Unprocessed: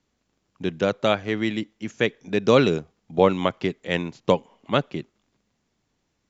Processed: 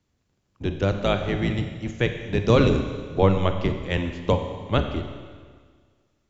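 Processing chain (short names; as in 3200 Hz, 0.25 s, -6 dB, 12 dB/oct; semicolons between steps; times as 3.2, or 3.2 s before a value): octaver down 1 oct, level +4 dB; Schroeder reverb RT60 1.7 s, combs from 31 ms, DRR 6.5 dB; gain -3 dB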